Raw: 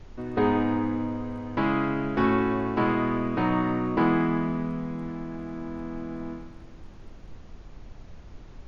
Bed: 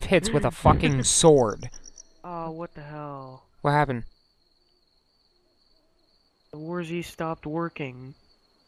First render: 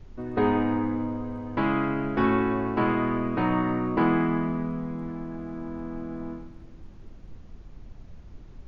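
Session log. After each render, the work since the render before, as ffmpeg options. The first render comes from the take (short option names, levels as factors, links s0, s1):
-af "afftdn=nr=6:nf=-46"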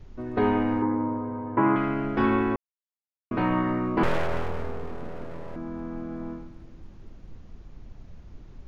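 -filter_complex "[0:a]asettb=1/sr,asplit=3[s0][s1][s2];[s0]atrim=end=0.824[s3];[s1]atrim=start=0.82:end=1.76,asetpts=PTS-STARTPTS,afade=t=in:d=0.004:c=qsin,afade=t=out:st=0.936:d=0.004:c=qsin,highpass=110,equalizer=f=120:t=q:w=4:g=7,equalizer=f=370:t=q:w=4:g=9,equalizer=f=960:t=q:w=4:g=8,lowpass=f=2100:w=0.5412,lowpass=f=2100:w=1.3066[s4];[s2]atrim=start=1.756[s5];[s3][s4]acrossfade=d=0.004:c1=hsin:c2=qsin[s6];[s6][s5]acrossfade=d=0.004:c1=qsin:c2=hsin,asettb=1/sr,asplit=3[s7][s8][s9];[s7]atrim=end=4.034[s10];[s8]atrim=start=4.03:end=5.56,asetpts=PTS-STARTPTS,afade=t=in:d=0.004:c=qsin,afade=t=out:st=1.526:d=0.004:c=qsin,aeval=exprs='abs(val(0))':c=same[s11];[s9]atrim=start=5.556[s12];[s10][s11]acrossfade=d=0.004:c1=hsin:c2=qsin[s13];[s13][s12]acrossfade=d=0.004:c1=qsin:c2=hsin,asplit=3[s14][s15][s16];[s14]atrim=end=2.56,asetpts=PTS-STARTPTS,afade=t=out:st=2.556:d=0.004:c=hsin[s17];[s15]atrim=start=2.56:end=3.31,asetpts=PTS-STARTPTS,volume=0[s18];[s16]atrim=start=3.31,asetpts=PTS-STARTPTS,afade=t=in:d=0.004:c=hsin[s19];[s17][s18][s19]concat=n=3:v=0:a=1"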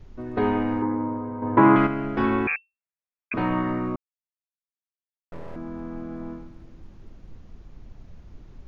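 -filter_complex "[0:a]asettb=1/sr,asplit=3[s0][s1][s2];[s0]atrim=end=1.424[s3];[s1]atrim=start=1.42:end=1.87,asetpts=PTS-STARTPTS,afade=t=in:d=0.004:c=qsin,afade=t=out:st=0.446:d=0.004:c=qsin,acontrast=79[s4];[s2]atrim=start=1.866[s5];[s3][s4]acrossfade=d=0.004:c1=hsin:c2=qsin[s6];[s6][s5]acrossfade=d=0.004:c1=qsin:c2=hsin,asettb=1/sr,asplit=3[s7][s8][s9];[s7]atrim=end=2.474[s10];[s8]atrim=start=2.47:end=3.34,asetpts=PTS-STARTPTS,afade=t=in:d=0.004:c=qsin,afade=t=out:st=0.866:d=0.004:c=qsin,lowpass=f=2300:t=q:w=0.5098,lowpass=f=2300:t=q:w=0.6013,lowpass=f=2300:t=q:w=0.9,lowpass=f=2300:t=q:w=2.563,afreqshift=-2700[s11];[s9]atrim=start=3.336[s12];[s10][s11]acrossfade=d=0.004:c1=hsin:c2=qsin[s13];[s13][s12]acrossfade=d=0.004:c1=qsin:c2=hsin,asplit=3[s14][s15][s16];[s14]atrim=end=3.96,asetpts=PTS-STARTPTS,afade=t=out:st=3.956:d=0.004:c=hsin[s17];[s15]atrim=start=3.96:end=5.32,asetpts=PTS-STARTPTS,volume=0[s18];[s16]atrim=start=5.32,asetpts=PTS-STARTPTS,afade=t=in:d=0.004:c=hsin[s19];[s17][s18][s19]concat=n=3:v=0:a=1"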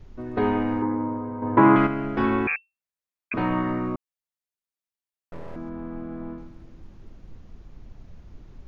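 -filter_complex "[0:a]asettb=1/sr,asplit=3[s0][s1][s2];[s0]atrim=end=5.694[s3];[s1]atrim=start=5.69:end=6.38,asetpts=PTS-STARTPTS,afade=t=in:d=0.004:c=qsin,afade=t=out:st=0.686:d=0.004:c=qsin,lowpass=3100[s4];[s2]atrim=start=6.376[s5];[s3][s4]acrossfade=d=0.004:c1=hsin:c2=qsin[s6];[s6][s5]acrossfade=d=0.004:c1=qsin:c2=hsin"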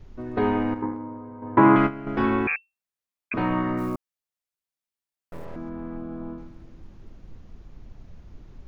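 -filter_complex "[0:a]asettb=1/sr,asplit=3[s0][s1][s2];[s0]atrim=end=0.744[s3];[s1]atrim=start=0.74:end=2.07,asetpts=PTS-STARTPTS,afade=t=in:d=0.004:c=qsin,afade=t=out:st=1.326:d=0.004:c=qsin,agate=range=0.398:threshold=0.0562:ratio=16:release=100:detection=peak[s4];[s2]atrim=start=2.066[s5];[s3][s4]acrossfade=d=0.004:c1=hsin:c2=qsin[s6];[s6][s5]acrossfade=d=0.004:c1=qsin:c2=hsin,asplit=3[s7][s8][s9];[s7]afade=t=out:st=3.77:d=0.02[s10];[s8]acrusher=bits=7:mode=log:mix=0:aa=0.000001,afade=t=in:st=3.77:d=0.02,afade=t=out:st=5.44:d=0.02[s11];[s9]afade=t=in:st=5.44:d=0.02[s12];[s10][s11][s12]amix=inputs=3:normalize=0,asettb=1/sr,asplit=3[s13][s14][s15];[s13]atrim=end=5.974[s16];[s14]atrim=start=5.97:end=6.39,asetpts=PTS-STARTPTS,afade=t=in:d=0.004:c=qsin,afade=t=out:st=0.416:d=0.004:c=qsin,equalizer=f=2000:w=3.6:g=-9[s17];[s15]atrim=start=6.386[s18];[s16][s17]acrossfade=d=0.004:c1=hsin:c2=qsin[s19];[s19][s18]acrossfade=d=0.004:c1=qsin:c2=hsin"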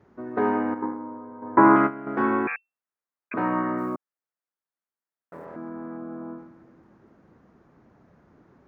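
-af "highpass=210,highshelf=f=2200:t=q:w=1.5:g=-10.5"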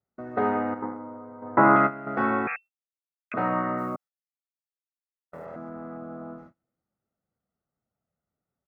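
-af "agate=range=0.0282:threshold=0.00562:ratio=16:detection=peak,aecho=1:1:1.5:0.54"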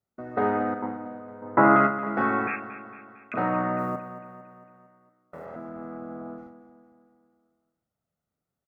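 -filter_complex "[0:a]asplit=2[s0][s1];[s1]adelay=39,volume=0.282[s2];[s0][s2]amix=inputs=2:normalize=0,aecho=1:1:227|454|681|908|1135|1362:0.211|0.116|0.0639|0.0352|0.0193|0.0106"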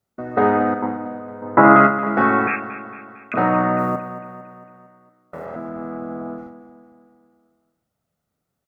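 -af "volume=2.51,alimiter=limit=0.891:level=0:latency=1"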